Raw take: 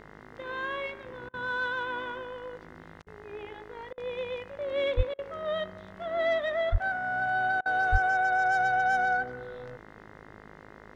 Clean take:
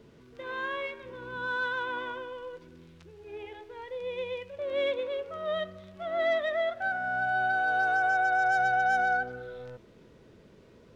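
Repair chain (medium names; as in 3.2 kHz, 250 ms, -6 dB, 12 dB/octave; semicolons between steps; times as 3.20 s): de-hum 52.5 Hz, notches 40; de-plosive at 4.96/6.71/7.91 s; interpolate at 1.29/3.02/3.93/5.14/7.61 s, 46 ms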